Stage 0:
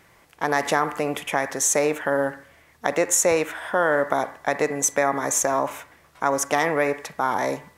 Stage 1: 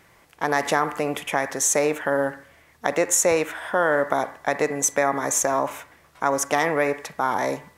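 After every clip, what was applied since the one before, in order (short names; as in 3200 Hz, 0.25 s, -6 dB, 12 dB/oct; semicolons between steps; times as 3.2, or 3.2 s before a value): nothing audible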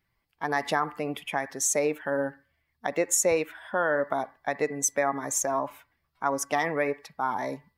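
per-bin expansion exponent 1.5; gain -2.5 dB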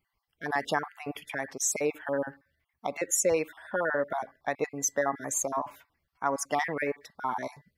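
random spectral dropouts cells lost 29%; gain -1.5 dB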